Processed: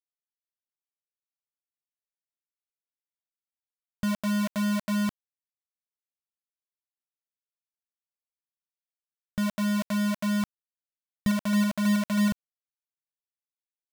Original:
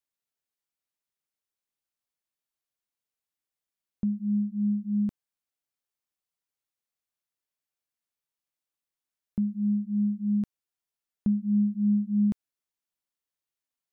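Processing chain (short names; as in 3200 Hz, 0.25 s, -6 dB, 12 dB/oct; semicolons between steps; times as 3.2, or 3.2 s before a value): comb 1.5 ms, depth 60%; bit-crush 5-bit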